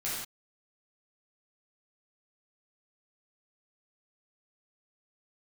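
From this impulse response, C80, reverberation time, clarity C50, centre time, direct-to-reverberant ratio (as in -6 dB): 3.0 dB, not exponential, -0.5 dB, 65 ms, -9.5 dB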